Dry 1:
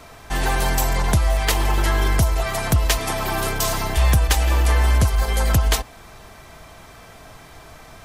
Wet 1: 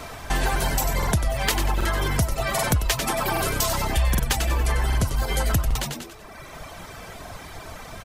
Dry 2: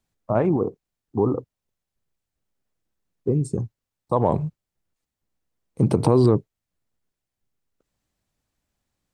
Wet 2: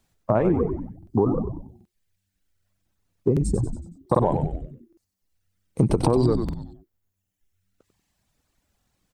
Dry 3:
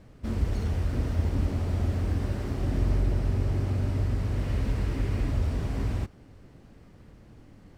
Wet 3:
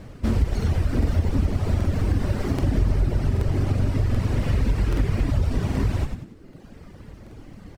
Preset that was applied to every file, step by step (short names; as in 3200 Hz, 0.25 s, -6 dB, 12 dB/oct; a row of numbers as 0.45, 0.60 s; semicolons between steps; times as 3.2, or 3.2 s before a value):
reverb removal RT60 1.3 s; on a send: frequency-shifting echo 94 ms, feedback 40%, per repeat -97 Hz, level -8 dB; on the sum: compressor 2.5:1, threshold -30 dBFS; crackling interface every 0.78 s, samples 2048, repeat, from 0.98; match loudness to -24 LUFS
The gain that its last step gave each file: +6.5, +9.0, +11.5 dB